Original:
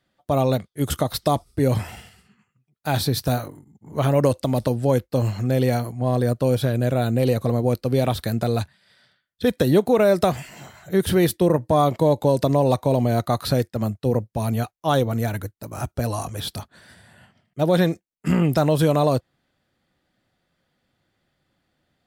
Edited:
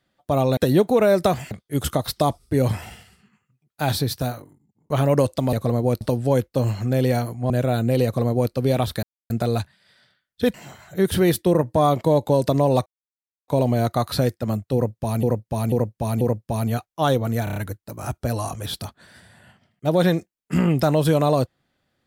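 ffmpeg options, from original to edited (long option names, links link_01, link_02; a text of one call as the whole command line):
ffmpeg -i in.wav -filter_complex "[0:a]asplit=17[link_01][link_02][link_03][link_04][link_05][link_06][link_07][link_08][link_09][link_10][link_11][link_12][link_13][link_14][link_15][link_16][link_17];[link_01]atrim=end=0.572[link_18];[link_02]atrim=start=9.548:end=10.492[link_19];[link_03]atrim=start=0.568:end=3.96,asetpts=PTS-STARTPTS,afade=type=out:start_time=2.422:duration=0.97[link_20];[link_04]atrim=start=3.96:end=4.592,asetpts=PTS-STARTPTS,afade=type=in:duration=0.004:curve=hsin[link_21];[link_05]atrim=start=7.328:end=7.812[link_22];[link_06]atrim=start=4.588:end=6.082[link_23];[link_07]atrim=start=6.778:end=8.31,asetpts=PTS-STARTPTS,afade=type=out:start_time=1.528:duration=0.004:curve=hsin,apad=pad_dur=0.27[link_24];[link_08]atrim=start=8.31:end=9.552,asetpts=PTS-STARTPTS,afade=type=in:duration=0.004:curve=hsin[link_25];[link_09]atrim=start=10.488:end=12.81,asetpts=PTS-STARTPTS,afade=type=out:start_time=2.318:duration=0.004:curve=hsin,apad=pad_dur=0.62[link_26];[link_10]atrim=start=12.81:end=14.562,asetpts=PTS-STARTPTS,afade=type=in:duration=0.004:curve=hsin[link_27];[link_11]atrim=start=14.068:end=14.562[link_28];[link_12]atrim=start=14.068:end=14.562[link_29];[link_13]atrim=start=14.068:end=15.332[link_30];[link_14]atrim=start=15.298:end=15.332[link_31];[link_15]atrim=start=15.298:end=15.332[link_32];[link_16]atrim=start=15.298:end=15.332[link_33];[link_17]atrim=start=15.298[link_34];[link_18][link_19]acrossfade=duration=0.004:curve1=hsin:curve2=hsin[link_35];[link_20][link_21]concat=n=2:v=0:a=1[link_36];[link_35][link_36]acrossfade=duration=0.004:curve1=hsin:curve2=hsin[link_37];[link_37][link_22]acrossfade=duration=0.004:curve1=hsin:curve2=hsin[link_38];[link_38][link_23]acrossfade=duration=0.004:curve1=hsin:curve2=hsin[link_39];[link_24][link_25]concat=n=2:v=0:a=1[link_40];[link_39][link_40]acrossfade=duration=0.004:curve1=hsin:curve2=hsin[link_41];[link_26][link_27]concat=n=2:v=0:a=1[link_42];[link_41][link_42]acrossfade=duration=0.004:curve1=hsin:curve2=hsin[link_43];[link_43][link_28]acrossfade=duration=0.004:curve1=hsin:curve2=hsin[link_44];[link_44][link_29]acrossfade=duration=0.004:curve1=hsin:curve2=hsin[link_45];[link_45][link_30]acrossfade=duration=0.004:curve1=hsin:curve2=hsin[link_46];[link_46][link_31]acrossfade=duration=0.004:curve1=hsin:curve2=hsin[link_47];[link_47][link_32]acrossfade=duration=0.004:curve1=hsin:curve2=hsin[link_48];[link_48][link_33]acrossfade=duration=0.004:curve1=hsin:curve2=hsin[link_49];[link_49][link_34]acrossfade=duration=0.004:curve1=hsin:curve2=hsin" out.wav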